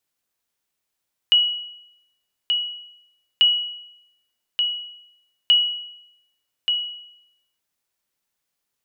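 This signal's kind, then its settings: sonar ping 2920 Hz, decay 0.82 s, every 2.09 s, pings 3, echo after 1.18 s, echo -6 dB -9 dBFS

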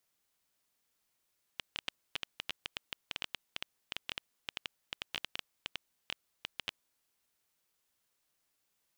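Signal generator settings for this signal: random clicks 8.5/s -18 dBFS 5.30 s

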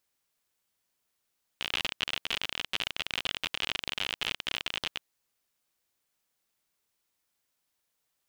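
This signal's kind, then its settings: random clicks 57/s -14.5 dBFS 3.37 s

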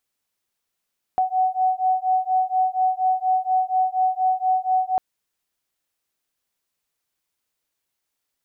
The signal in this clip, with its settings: beating tones 745 Hz, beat 4.2 Hz, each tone -21 dBFS 3.80 s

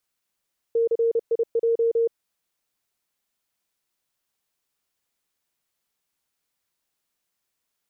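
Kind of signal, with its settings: Morse "CIJ" 30 wpm 461 Hz -17.5 dBFS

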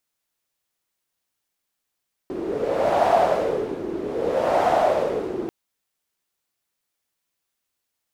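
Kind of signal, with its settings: wind-like swept noise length 3.19 s, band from 350 Hz, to 710 Hz, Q 5, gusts 2, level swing 10.5 dB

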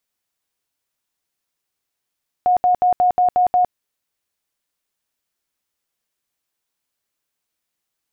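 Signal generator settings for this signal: tone bursts 724 Hz, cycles 78, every 0.18 s, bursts 7, -11.5 dBFS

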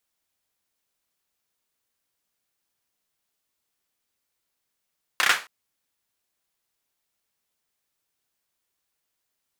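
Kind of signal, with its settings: hand clap length 0.27 s, apart 31 ms, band 1600 Hz, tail 0.29 s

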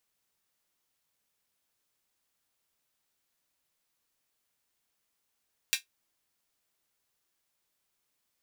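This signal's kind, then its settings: closed hi-hat, high-pass 2400 Hz, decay 0.13 s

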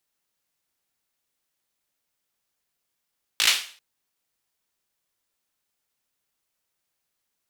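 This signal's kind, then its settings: hand clap length 0.39 s, bursts 5, apart 18 ms, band 3100 Hz, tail 0.43 s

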